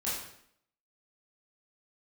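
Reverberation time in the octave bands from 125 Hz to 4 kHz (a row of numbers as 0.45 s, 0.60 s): 0.65 s, 0.75 s, 0.70 s, 0.65 s, 0.65 s, 0.60 s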